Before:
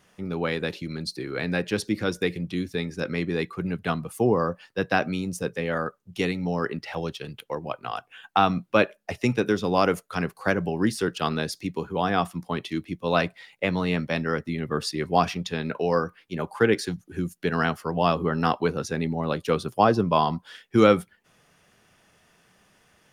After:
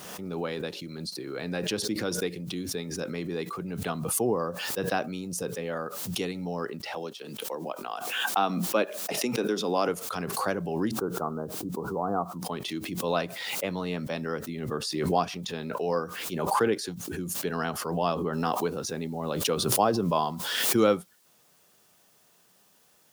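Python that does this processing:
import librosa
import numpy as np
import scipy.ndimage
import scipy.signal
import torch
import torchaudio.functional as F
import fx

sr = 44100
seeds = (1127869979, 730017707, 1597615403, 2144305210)

y = fx.highpass(x, sr, hz=190.0, slope=24, at=(6.95, 9.89))
y = fx.steep_lowpass(y, sr, hz=1400.0, slope=72, at=(10.91, 12.42))
y = fx.noise_floor_step(y, sr, seeds[0], at_s=18.33, before_db=-68, after_db=-60, tilt_db=0.0)
y = fx.highpass(y, sr, hz=240.0, slope=6)
y = fx.peak_eq(y, sr, hz=2000.0, db=-7.0, octaves=1.1)
y = fx.pre_swell(y, sr, db_per_s=35.0)
y = y * 10.0 ** (-3.5 / 20.0)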